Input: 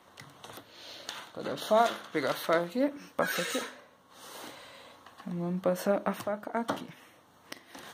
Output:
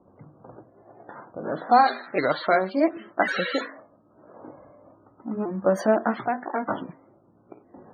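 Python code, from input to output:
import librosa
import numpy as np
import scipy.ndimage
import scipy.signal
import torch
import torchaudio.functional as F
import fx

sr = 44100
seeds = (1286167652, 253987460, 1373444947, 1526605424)

y = fx.pitch_ramps(x, sr, semitones=3.5, every_ms=1091)
y = fx.env_lowpass(y, sr, base_hz=410.0, full_db=-26.0)
y = fx.spec_topn(y, sr, count=64)
y = F.gain(torch.from_numpy(y), 8.0).numpy()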